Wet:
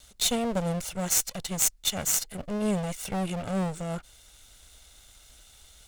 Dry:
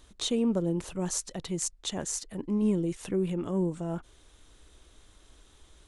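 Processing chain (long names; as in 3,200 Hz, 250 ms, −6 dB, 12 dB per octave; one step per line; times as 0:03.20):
lower of the sound and its delayed copy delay 1.4 ms
high-shelf EQ 2,200 Hz +11.5 dB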